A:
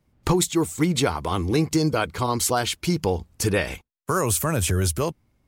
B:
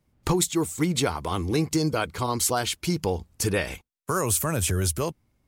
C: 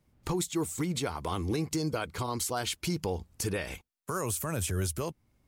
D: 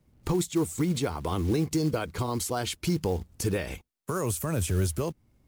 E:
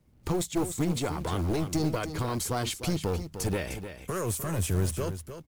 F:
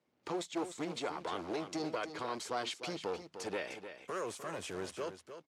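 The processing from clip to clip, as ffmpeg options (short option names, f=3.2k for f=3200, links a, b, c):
-af "equalizer=f=11k:t=o:w=1.9:g=3,volume=-3dB"
-af "alimiter=limit=-21.5dB:level=0:latency=1:release=335"
-filter_complex "[0:a]acrossover=split=590[a][b];[a]acontrast=31[c];[c][b]amix=inputs=2:normalize=0,acrusher=bits=6:mode=log:mix=0:aa=0.000001"
-af "aeval=exprs='clip(val(0),-1,0.0376)':c=same,aecho=1:1:303:0.316"
-af "highpass=400,lowpass=4.9k,volume=-4dB"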